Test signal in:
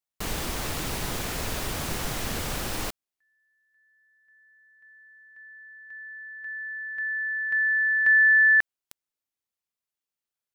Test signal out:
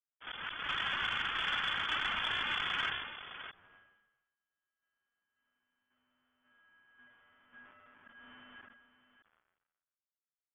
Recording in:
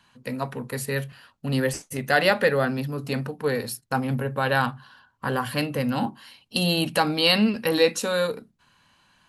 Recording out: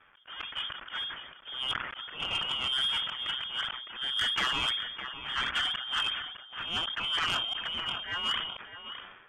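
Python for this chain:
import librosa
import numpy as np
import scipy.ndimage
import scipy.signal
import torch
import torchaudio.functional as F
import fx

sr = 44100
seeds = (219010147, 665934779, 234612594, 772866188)

y = fx.dead_time(x, sr, dead_ms=0.27)
y = scipy.signal.sosfilt(scipy.signal.butter(2, 44.0, 'highpass', fs=sr, output='sos'), y)
y = fx.env_flanger(y, sr, rest_ms=11.3, full_db=-20.5)
y = fx.over_compress(y, sr, threshold_db=-30.0, ratio=-1.0)
y = fx.auto_swell(y, sr, attack_ms=236.0)
y = fx.peak_eq(y, sr, hz=2000.0, db=14.5, octaves=0.8)
y = y + 10.0 ** (-13.5 / 20.0) * np.pad(y, (int(609 * sr / 1000.0), 0))[:len(y)]
y = fx.freq_invert(y, sr, carrier_hz=3400)
y = 10.0 ** (-21.0 / 20.0) * np.tanh(y / 10.0 ** (-21.0 / 20.0))
y = fx.dynamic_eq(y, sr, hz=530.0, q=1.0, threshold_db=-52.0, ratio=4.0, max_db=-7)
y = fx.sustainer(y, sr, db_per_s=53.0)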